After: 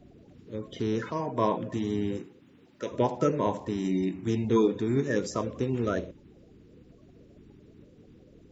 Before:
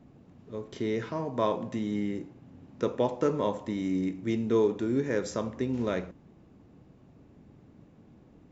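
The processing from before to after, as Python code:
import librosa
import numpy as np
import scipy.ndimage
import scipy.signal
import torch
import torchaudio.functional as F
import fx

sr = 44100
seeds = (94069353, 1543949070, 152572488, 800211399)

y = fx.spec_quant(x, sr, step_db=30)
y = fx.highpass(y, sr, hz=fx.line((2.16, 250.0), (2.91, 940.0)), slope=6, at=(2.16, 2.91), fade=0.02)
y = y * 10.0 ** (2.0 / 20.0)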